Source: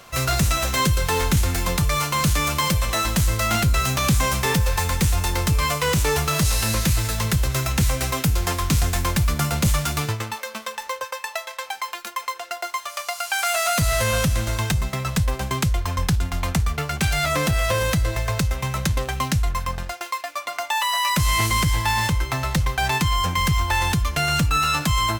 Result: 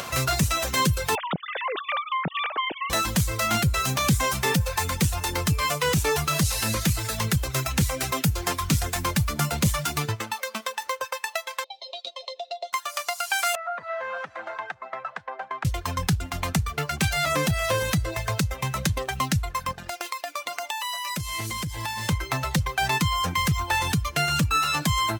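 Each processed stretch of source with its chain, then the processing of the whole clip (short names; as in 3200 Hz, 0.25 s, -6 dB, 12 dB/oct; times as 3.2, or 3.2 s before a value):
1.15–2.9 sine-wave speech + compressor 4:1, threshold -24 dBFS
11.64–12.73 double band-pass 1500 Hz, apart 2.7 oct + air absorption 66 m + comb 7.3 ms, depth 62%
13.55–15.65 Chebyshev band-pass 700–1600 Hz + bell 1200 Hz -6.5 dB 2.3 oct
19.72–22.09 HPF 46 Hz 6 dB/oct + dynamic EQ 1300 Hz, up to -4 dB, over -35 dBFS, Q 0.86 + compressor 4:1, threshold -29 dBFS
whole clip: reverb removal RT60 0.76 s; HPF 79 Hz; upward compressor, threshold -23 dBFS; gain -1 dB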